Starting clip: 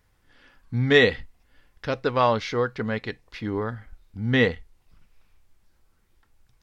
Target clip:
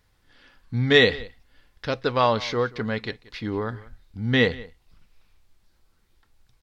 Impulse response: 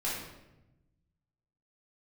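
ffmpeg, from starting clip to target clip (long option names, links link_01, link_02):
-filter_complex "[0:a]equalizer=frequency=4100:width_type=o:width=0.75:gain=5.5,asplit=2[link_01][link_02];[link_02]adelay=180.8,volume=-20dB,highshelf=frequency=4000:gain=-4.07[link_03];[link_01][link_03]amix=inputs=2:normalize=0"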